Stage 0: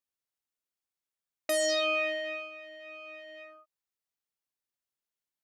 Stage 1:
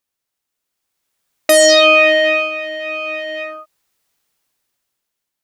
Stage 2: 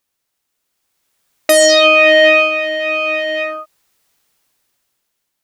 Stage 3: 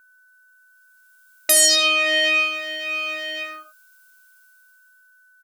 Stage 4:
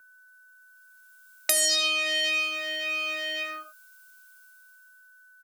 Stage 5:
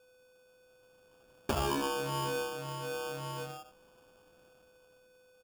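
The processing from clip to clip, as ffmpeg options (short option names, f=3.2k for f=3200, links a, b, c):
-filter_complex "[0:a]asplit=2[a][b];[b]alimiter=level_in=6dB:limit=-24dB:level=0:latency=1,volume=-6dB,volume=0dB[c];[a][c]amix=inputs=2:normalize=0,dynaudnorm=f=230:g=9:m=11.5dB,volume=5dB"
-af "alimiter=level_in=7dB:limit=-1dB:release=50:level=0:latency=1,volume=-1dB"
-af "aecho=1:1:73:0.335,crystalizer=i=7:c=0,aeval=exprs='val(0)+0.0141*sin(2*PI*1500*n/s)':c=same,volume=-16dB"
-filter_complex "[0:a]acrossover=split=220|460|3700[a][b][c][d];[a]acompressor=threshold=-58dB:ratio=4[e];[b]acompressor=threshold=-51dB:ratio=4[f];[c]acompressor=threshold=-30dB:ratio=4[g];[d]acompressor=threshold=-22dB:ratio=4[h];[e][f][g][h]amix=inputs=4:normalize=0"
-af "acrusher=samples=22:mix=1:aa=0.000001,volume=-8dB"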